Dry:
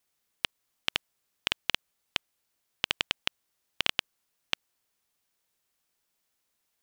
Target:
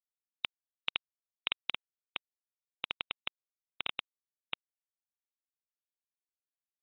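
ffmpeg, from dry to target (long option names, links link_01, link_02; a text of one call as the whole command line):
ffmpeg -i in.wav -filter_complex "[0:a]bandreject=frequency=1700:width=7,alimiter=limit=-15dB:level=0:latency=1:release=499,acrusher=bits=4:mix=0:aa=0.5,asetnsamples=nb_out_samples=441:pad=0,asendcmd='1.74 lowpass f 2000',asplit=2[link_01][link_02];[link_02]highpass=frequency=720:poles=1,volume=8dB,asoftclip=type=tanh:threshold=-14dB[link_03];[link_01][link_03]amix=inputs=2:normalize=0,lowpass=frequency=6000:poles=1,volume=-6dB,volume=4.5dB" -ar 22050 -c:a aac -b:a 16k out.aac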